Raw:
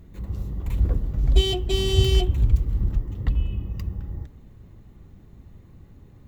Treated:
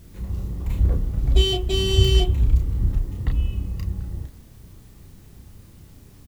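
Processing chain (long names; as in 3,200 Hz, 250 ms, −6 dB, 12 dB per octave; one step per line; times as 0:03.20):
background noise white −60 dBFS
double-tracking delay 32 ms −4.5 dB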